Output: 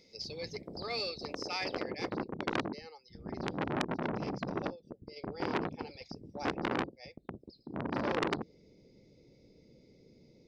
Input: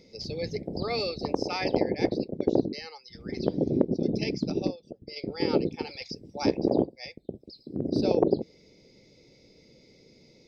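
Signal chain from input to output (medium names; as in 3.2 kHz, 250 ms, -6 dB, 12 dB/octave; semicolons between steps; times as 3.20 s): tilt shelf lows -4.5 dB, about 770 Hz, from 2.09 s lows +5.5 dB; transformer saturation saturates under 3.2 kHz; trim -6.5 dB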